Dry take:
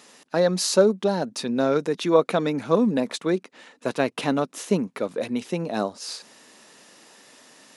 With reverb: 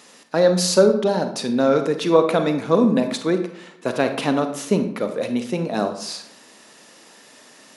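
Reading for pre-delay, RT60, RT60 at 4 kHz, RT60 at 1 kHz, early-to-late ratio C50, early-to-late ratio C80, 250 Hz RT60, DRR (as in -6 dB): 33 ms, 0.75 s, 0.45 s, 0.70 s, 9.0 dB, 12.0 dB, 0.90 s, 7.0 dB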